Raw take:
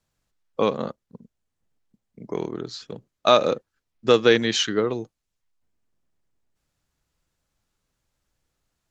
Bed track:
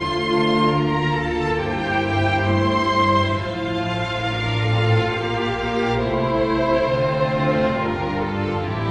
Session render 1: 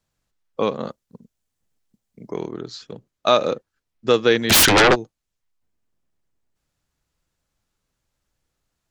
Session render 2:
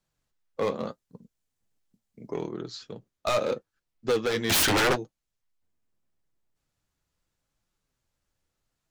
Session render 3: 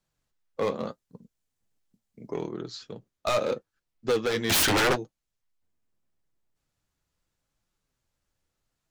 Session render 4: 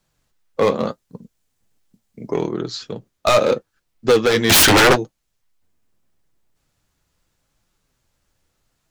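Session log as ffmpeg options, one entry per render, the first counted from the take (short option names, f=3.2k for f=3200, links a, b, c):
-filter_complex "[0:a]asettb=1/sr,asplit=3[a][b][c];[a]atrim=end=0.854[d];[b]atrim=start=0.85:end=2.31,asetpts=PTS-STARTPTS,afade=t=in:d=0.004:c=qsin,afade=t=out:st=1.456:d=0.004:c=qsin,highshelf=f=3.7k:g=8[e];[c]atrim=start=2.306[f];[d][e]acrossfade=d=0.004:c1=hsin:c2=qsin[g];[g][f]acrossfade=d=0.004:c1=qsin:c2=hsin,asplit=3[h][i][j];[h]afade=t=out:st=4.49:d=0.02[k];[i]aeval=exprs='0.335*sin(PI/2*7.94*val(0)/0.335)':c=same,afade=t=in:st=4.49:d=0.02,afade=t=out:st=4.94:d=0.02[l];[j]afade=t=in:st=4.94:d=0.02[m];[k][l][m]amix=inputs=3:normalize=0"
-af "asoftclip=type=hard:threshold=-17dB,flanger=delay=5.3:depth=6.3:regen=-48:speed=0.78:shape=triangular"
-af anull
-af "volume=11dB"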